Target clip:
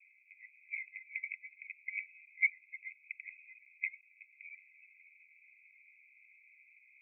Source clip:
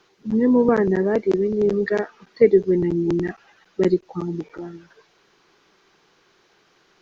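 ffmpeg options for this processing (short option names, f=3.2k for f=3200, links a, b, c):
-af "asuperpass=centerf=2300:order=20:qfactor=4.3,volume=8.5dB"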